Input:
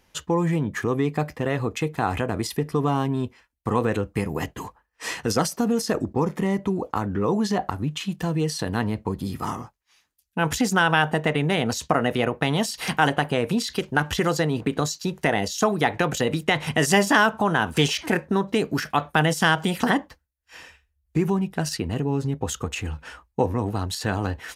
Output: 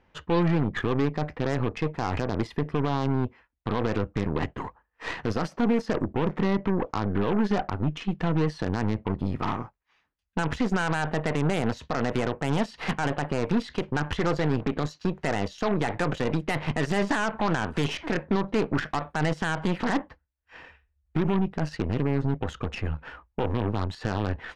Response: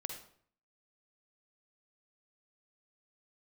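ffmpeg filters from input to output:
-af "lowpass=2100,alimiter=limit=-16dB:level=0:latency=1:release=38,aeval=exprs='0.158*(cos(1*acos(clip(val(0)/0.158,-1,1)))-cos(1*PI/2))+0.0224*(cos(6*acos(clip(val(0)/0.158,-1,1)))-cos(6*PI/2))':channel_layout=same"

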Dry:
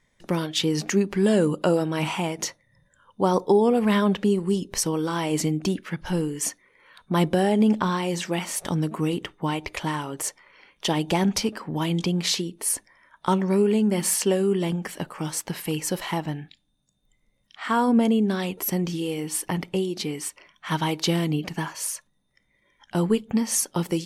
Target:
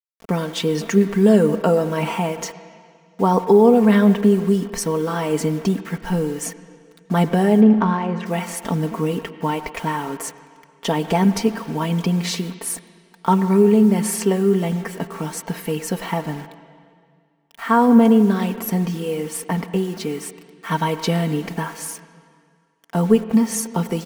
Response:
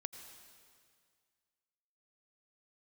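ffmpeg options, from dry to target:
-filter_complex "[0:a]acrusher=bits=6:mix=0:aa=0.000001,aecho=1:1:4.4:0.65,asplit=3[link_01][link_02][link_03];[link_01]afade=type=out:start_time=7.6:duration=0.02[link_04];[link_02]adynamicsmooth=sensitivity=1:basefreq=1800,afade=type=in:start_time=7.6:duration=0.02,afade=type=out:start_time=8.25:duration=0.02[link_05];[link_03]afade=type=in:start_time=8.25:duration=0.02[link_06];[link_04][link_05][link_06]amix=inputs=3:normalize=0,asplit=2[link_07][link_08];[1:a]atrim=start_sample=2205,lowpass=2300,lowshelf=frequency=73:gain=-9.5[link_09];[link_08][link_09]afir=irnorm=-1:irlink=0,volume=4dB[link_10];[link_07][link_10]amix=inputs=2:normalize=0,volume=-2.5dB"

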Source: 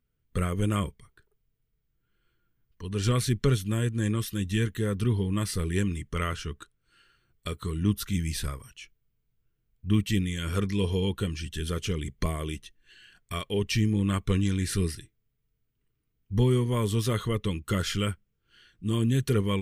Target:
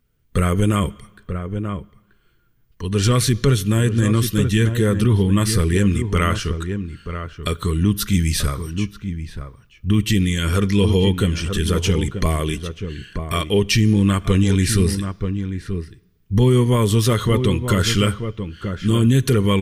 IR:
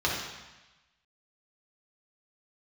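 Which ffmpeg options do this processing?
-filter_complex "[0:a]asplit=2[link_01][link_02];[link_02]adelay=932.9,volume=-9dB,highshelf=frequency=4000:gain=-21[link_03];[link_01][link_03]amix=inputs=2:normalize=0,asplit=2[link_04][link_05];[1:a]atrim=start_sample=2205,highshelf=frequency=4700:gain=11[link_06];[link_05][link_06]afir=irnorm=-1:irlink=0,volume=-33.5dB[link_07];[link_04][link_07]amix=inputs=2:normalize=0,alimiter=level_in=16.5dB:limit=-1dB:release=50:level=0:latency=1,volume=-5.5dB"

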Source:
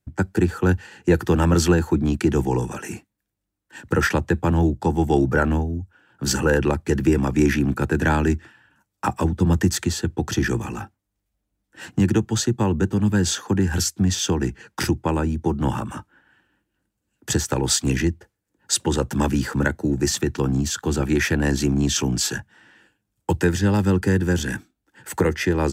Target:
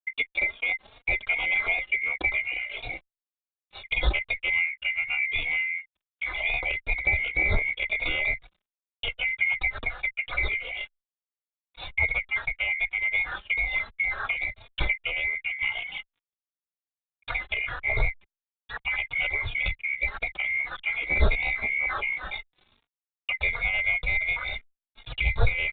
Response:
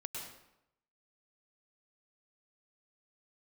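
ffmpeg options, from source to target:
-filter_complex "[0:a]afftfilt=real='real(if(lt(b,920),b+92*(1-2*mod(floor(b/92),2)),b),0)':imag='imag(if(lt(b,920),b+92*(1-2*mod(floor(b/92),2)),b),0)':win_size=2048:overlap=0.75,asubboost=boost=8:cutoff=86,acrossover=split=210|1500[link_01][link_02][link_03];[link_03]acompressor=threshold=-33dB:ratio=16[link_04];[link_01][link_02][link_04]amix=inputs=3:normalize=0,aeval=exprs='sgn(val(0))*max(abs(val(0))-0.00422,0)':channel_layout=same,aresample=8000,aresample=44100,asplit=2[link_05][link_06];[link_06]adelay=3.6,afreqshift=2.7[link_07];[link_05][link_07]amix=inputs=2:normalize=1,volume=6dB"

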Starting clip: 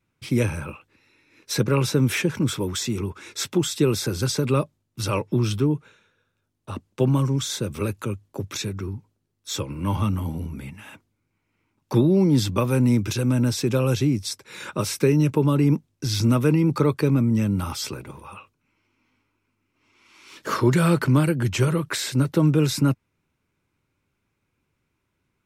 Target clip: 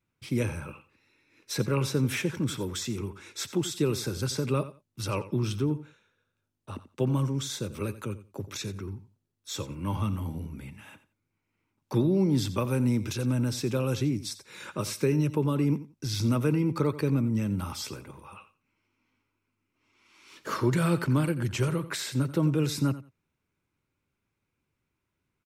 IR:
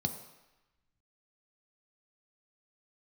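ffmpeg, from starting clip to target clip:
-af "aecho=1:1:88|176:0.178|0.0302,volume=-6.5dB"

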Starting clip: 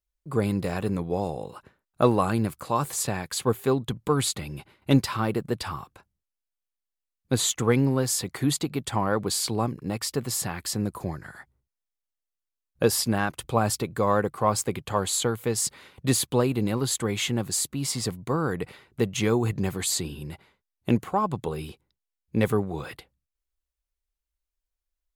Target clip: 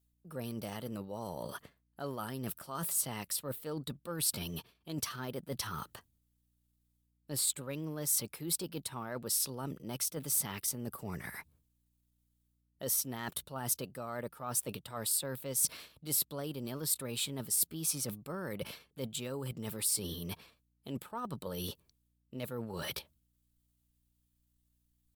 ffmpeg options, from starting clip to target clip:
ffmpeg -i in.wav -af "areverse,acompressor=threshold=-37dB:ratio=10,areverse,asetrate=50951,aresample=44100,atempo=0.865537,aeval=exprs='val(0)+0.000158*(sin(2*PI*60*n/s)+sin(2*PI*2*60*n/s)/2+sin(2*PI*3*60*n/s)/3+sin(2*PI*4*60*n/s)/4+sin(2*PI*5*60*n/s)/5)':channel_layout=same,aexciter=amount=2.8:drive=1.3:freq=3000" out.wav

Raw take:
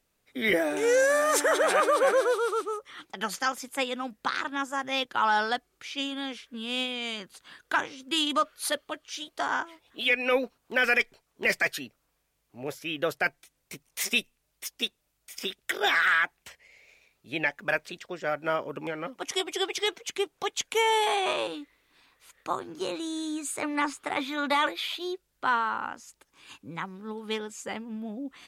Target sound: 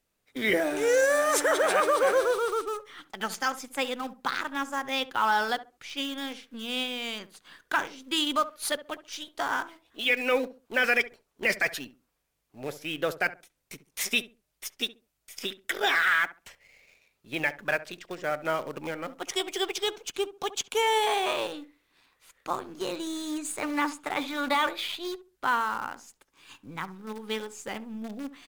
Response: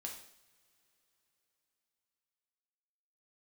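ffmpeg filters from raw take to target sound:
-filter_complex "[0:a]asettb=1/sr,asplit=3[link_01][link_02][link_03];[link_01]atrim=end=19.764[link_04];[link_02]atrim=start=19.76:end=20.83,asetpts=PTS-STARTPTS,afade=type=in:duration=0.004:curve=qsin,afade=type=out:start_time=1.066:duration=0.004:curve=qsin,equalizer=frequency=2000:width_type=o:width=0.27:gain=-11[link_05];[link_03]atrim=start=20.826[link_06];[link_04][link_05]acrossfade=duration=0.004:curve1=hsin:curve2=qsin[link_07];[link_07][link_06]acrossfade=duration=0.004:curve1=qsin:curve2=hsin,asplit=2[link_08][link_09];[link_09]acrusher=bits=6:dc=4:mix=0:aa=0.000001,volume=-7.5dB[link_10];[link_08][link_10]amix=inputs=2:normalize=0,asplit=2[link_11][link_12];[link_12]adelay=68,lowpass=frequency=1000:poles=1,volume=-13dB,asplit=2[link_13][link_14];[link_14]adelay=68,lowpass=frequency=1000:poles=1,volume=0.27,asplit=2[link_15][link_16];[link_16]adelay=68,lowpass=frequency=1000:poles=1,volume=0.27[link_17];[link_11][link_13][link_15][link_17]amix=inputs=4:normalize=0,volume=-3.5dB"

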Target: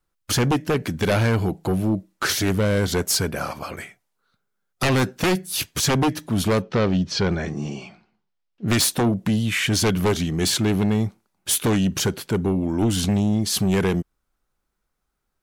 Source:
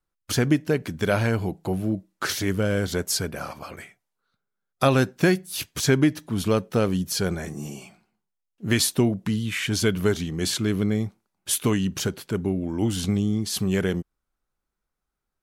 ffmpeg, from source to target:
ffmpeg -i in.wav -filter_complex "[0:a]aeval=exprs='0.501*sin(PI/2*3.55*val(0)/0.501)':channel_layout=same,asettb=1/sr,asplit=3[link_01][link_02][link_03];[link_01]atrim=end=6.624[link_04];[link_02]atrim=start=6.62:end=8.68,asetpts=PTS-STARTPTS,afade=type=in:duration=0.004:curve=qsin,afade=type=out:start_time=2.056:duration=0.004:curve=qsin,lowpass=frequency=5200:width=0.5412,lowpass=frequency=5200:width=1.3066[link_05];[link_03]atrim=start=8.676[link_06];[link_04][link_05]acrossfade=duration=0.004:curve1=hsin:curve2=qsin[link_07];[link_07][link_06]acrossfade=duration=0.004:curve1=qsin:curve2=hsin,volume=-9dB" out.wav

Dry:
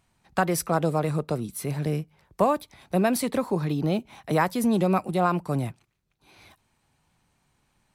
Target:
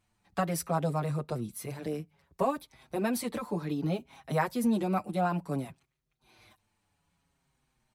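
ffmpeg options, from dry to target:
ffmpeg -i in.wav -filter_complex "[0:a]asplit=2[link_01][link_02];[link_02]adelay=6.3,afreqshift=-0.61[link_03];[link_01][link_03]amix=inputs=2:normalize=1,volume=-3.5dB" out.wav

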